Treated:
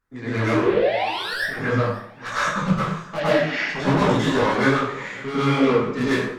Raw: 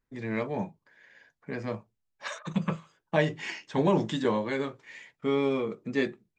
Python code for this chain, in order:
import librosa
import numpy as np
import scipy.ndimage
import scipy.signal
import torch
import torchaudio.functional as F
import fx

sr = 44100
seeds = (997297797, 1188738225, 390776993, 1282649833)

y = fx.peak_eq(x, sr, hz=1300.0, db=11.0, octaves=0.74)
y = fx.spec_paint(y, sr, seeds[0], shape='rise', start_s=0.43, length_s=0.91, low_hz=300.0, high_hz=1900.0, level_db=-22.0)
y = fx.tube_stage(y, sr, drive_db=29.0, bias=0.3)
y = fx.env_phaser(y, sr, low_hz=280.0, high_hz=1600.0, full_db=-27.5, at=(0.53, 1.56))
y = fx.cabinet(y, sr, low_hz=180.0, low_slope=24, high_hz=5100.0, hz=(270.0, 400.0, 650.0, 950.0), db=(5, -7, 8, -7), at=(3.17, 3.57), fade=0.02)
y = fx.echo_feedback(y, sr, ms=544, feedback_pct=36, wet_db=-20)
y = fx.rev_plate(y, sr, seeds[1], rt60_s=0.63, hf_ratio=0.85, predelay_ms=90, drr_db=-9.5)
y = fx.detune_double(y, sr, cents=43)
y = y * 10.0 ** (7.0 / 20.0)